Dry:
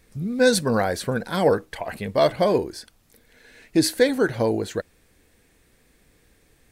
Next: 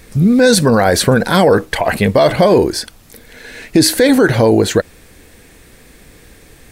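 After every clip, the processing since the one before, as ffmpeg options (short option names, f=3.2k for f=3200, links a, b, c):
-af "alimiter=level_in=18dB:limit=-1dB:release=50:level=0:latency=1,volume=-1dB"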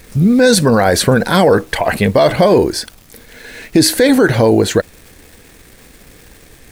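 -af "acrusher=bits=8:dc=4:mix=0:aa=0.000001"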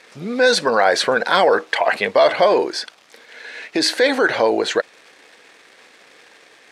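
-af "highpass=580,lowpass=4.6k"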